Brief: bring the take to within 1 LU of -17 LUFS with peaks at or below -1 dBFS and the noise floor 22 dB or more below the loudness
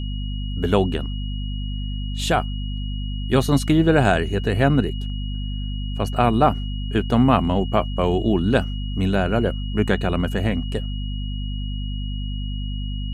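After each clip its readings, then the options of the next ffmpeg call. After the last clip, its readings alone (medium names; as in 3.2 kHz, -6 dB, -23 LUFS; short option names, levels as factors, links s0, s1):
hum 50 Hz; highest harmonic 250 Hz; hum level -24 dBFS; steady tone 2.9 kHz; tone level -38 dBFS; loudness -22.5 LUFS; peak level -3.5 dBFS; loudness target -17.0 LUFS
-> -af "bandreject=f=50:t=h:w=4,bandreject=f=100:t=h:w=4,bandreject=f=150:t=h:w=4,bandreject=f=200:t=h:w=4,bandreject=f=250:t=h:w=4"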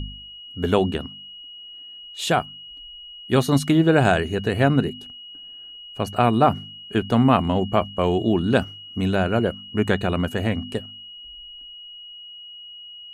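hum not found; steady tone 2.9 kHz; tone level -38 dBFS
-> -af "bandreject=f=2900:w=30"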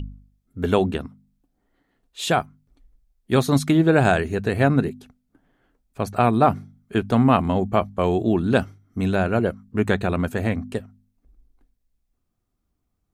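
steady tone not found; loudness -21.5 LUFS; peak level -4.5 dBFS; loudness target -17.0 LUFS
-> -af "volume=1.68,alimiter=limit=0.891:level=0:latency=1"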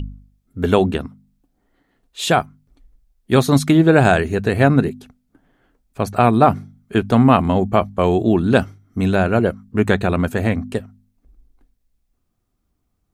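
loudness -17.0 LUFS; peak level -1.0 dBFS; noise floor -70 dBFS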